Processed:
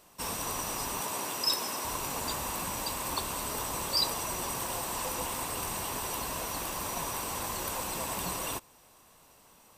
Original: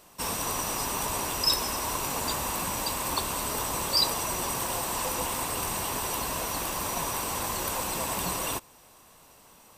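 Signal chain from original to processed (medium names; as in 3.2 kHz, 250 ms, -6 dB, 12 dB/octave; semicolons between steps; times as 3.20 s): 1.01–1.85 s: high-pass 170 Hz 12 dB/octave; trim -4 dB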